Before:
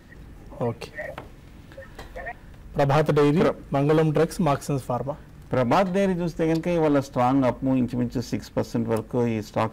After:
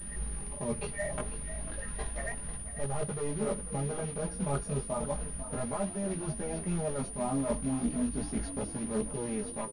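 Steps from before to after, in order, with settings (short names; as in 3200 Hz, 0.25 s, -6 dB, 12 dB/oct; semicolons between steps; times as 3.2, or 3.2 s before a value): ending faded out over 0.66 s; low shelf 84 Hz +10 dB; comb 4.9 ms, depth 99%; dynamic EQ 2800 Hz, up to -6 dB, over -39 dBFS, Q 0.8; reverse; compressor 20:1, threshold -27 dBFS, peak gain reduction 17.5 dB; reverse; short-mantissa float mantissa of 2-bit; chorus voices 2, 0.33 Hz, delay 18 ms, depth 4.2 ms; frequency-shifting echo 0.495 s, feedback 45%, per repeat +34 Hz, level -13 dB; pulse-width modulation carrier 9500 Hz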